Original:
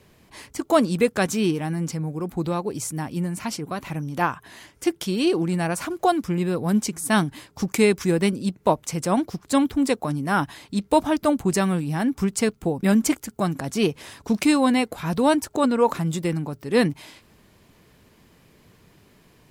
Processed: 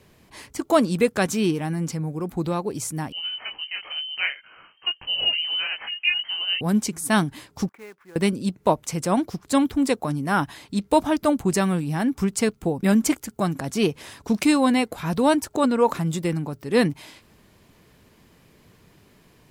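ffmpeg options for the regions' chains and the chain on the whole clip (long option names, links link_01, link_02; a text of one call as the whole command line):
ffmpeg -i in.wav -filter_complex "[0:a]asettb=1/sr,asplit=3[link_01][link_02][link_03];[link_01]atrim=end=3.124[link_04];[link_02]atrim=start=3.12:end=6.61,asetpts=PTS-STARTPTS,afade=type=in:duration=0.004:curve=qsin,afade=type=out:start_time=3.486:duration=0.004:curve=qsin,flanger=delay=19:depth=2.9:speed=2.2,lowpass=frequency=2700:width_type=q:width=0.5098,lowpass=frequency=2700:width_type=q:width=0.6013,lowpass=frequency=2700:width_type=q:width=0.9,lowpass=frequency=2700:width_type=q:width=2.563,afreqshift=-3200[link_05];[link_03]atrim=start=6.606[link_06];[link_04][link_05]acrossfade=duration=0.004:curve1=hsin:curve2=qsin[link_07];[link_07][link_06]acrossfade=duration=0.004:curve1=qsin:curve2=hsin,asettb=1/sr,asplit=3[link_08][link_09][link_10];[link_08]atrim=end=7.694[link_11];[link_09]atrim=start=7.69:end=8.16,asetpts=PTS-STARTPTS,afade=type=in:duration=0.004:curve=qsin,afade=type=out:start_time=0.466:duration=0.004:curve=qsin,lowpass=frequency=1600:width=0.5412,lowpass=frequency=1600:width=1.3066,aderivative,acrusher=bits=3:mode=log:mix=0:aa=0.000001[link_12];[link_10]atrim=start=8.156[link_13];[link_11][link_12]acrossfade=duration=0.004:curve1=hsin:curve2=qsin[link_14];[link_14][link_13]acrossfade=duration=0.004:curve1=qsin:curve2=hsin" out.wav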